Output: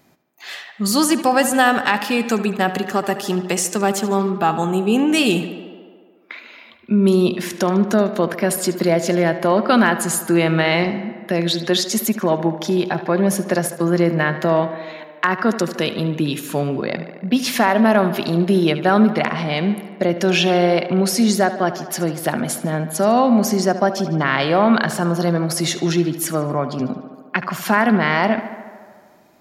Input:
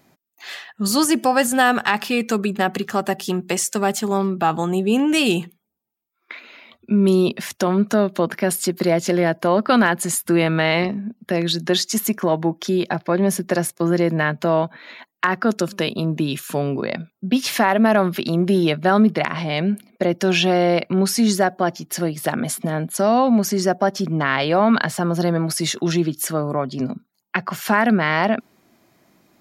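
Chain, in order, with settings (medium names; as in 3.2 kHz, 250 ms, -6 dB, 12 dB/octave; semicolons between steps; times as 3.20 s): tape echo 74 ms, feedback 80%, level -11.5 dB, low-pass 4.2 kHz; trim +1 dB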